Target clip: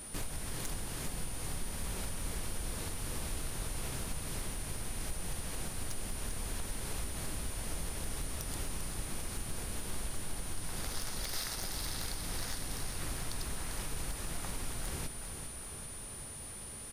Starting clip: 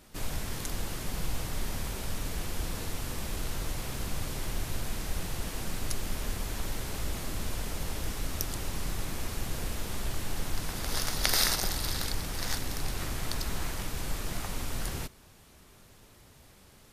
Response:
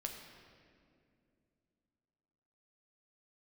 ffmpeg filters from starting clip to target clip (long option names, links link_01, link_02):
-filter_complex "[0:a]acompressor=threshold=-40dB:ratio=12,aeval=exprs='val(0)+0.00282*sin(2*PI*9400*n/s)':channel_layout=same,volume=35dB,asoftclip=hard,volume=-35dB,asplit=2[link_01][link_02];[link_02]aecho=0:1:396|792|1188|1584|1980|2376|2772:0.398|0.231|0.134|0.0777|0.0451|0.0261|0.0152[link_03];[link_01][link_03]amix=inputs=2:normalize=0,volume=5.5dB"